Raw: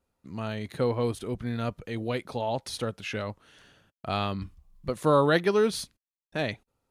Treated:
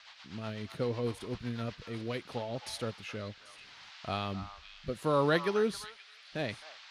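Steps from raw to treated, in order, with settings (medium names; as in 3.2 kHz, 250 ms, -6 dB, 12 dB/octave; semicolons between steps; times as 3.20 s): band noise 780–4700 Hz -47 dBFS; rotary cabinet horn 8 Hz, later 0.75 Hz, at 1.81 s; repeats whose band climbs or falls 263 ms, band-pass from 1.1 kHz, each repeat 1.4 oct, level -8.5 dB; trim -4.5 dB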